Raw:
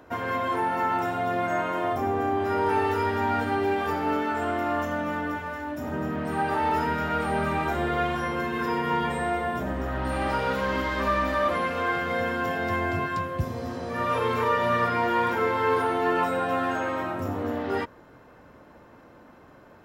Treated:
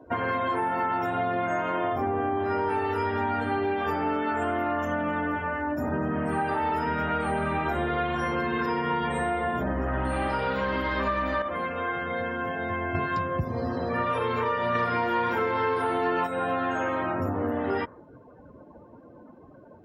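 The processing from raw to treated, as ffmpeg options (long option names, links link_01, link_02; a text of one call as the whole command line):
ffmpeg -i in.wav -filter_complex "[0:a]asettb=1/sr,asplit=3[link_01][link_02][link_03];[link_01]atrim=end=14.754[link_04];[link_02]atrim=start=14.75:end=16.27,asetpts=PTS-STARTPTS,afade=type=in:duration=0.004:curve=qsin,afade=type=out:start_time=1.516:duration=0.004:curve=qsin,acontrast=49[link_05];[link_03]atrim=start=16.266[link_06];[link_04][link_05]acrossfade=duration=0.004:curve1=hsin:curve2=qsin[link_07];[link_07][link_06]acrossfade=duration=0.004:curve1=qsin:curve2=hsin,asplit=3[link_08][link_09][link_10];[link_08]atrim=end=11.422[link_11];[link_09]atrim=start=11.418:end=12.952,asetpts=PTS-STARTPTS,volume=-7.5dB[link_12];[link_10]atrim=start=12.948[link_13];[link_11][link_12]acrossfade=duration=0.004:curve1=hsin:curve2=hsin[link_14];[link_14][link_13]acrossfade=duration=0.004:curve1=hsin:curve2=hsin,afftdn=noise_reduction=23:noise_floor=-46,acompressor=threshold=-29dB:ratio=6,volume=5dB" out.wav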